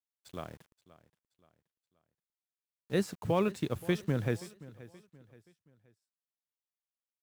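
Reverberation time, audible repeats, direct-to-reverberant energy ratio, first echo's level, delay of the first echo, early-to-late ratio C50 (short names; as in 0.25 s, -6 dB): none, 2, none, -19.0 dB, 0.526 s, none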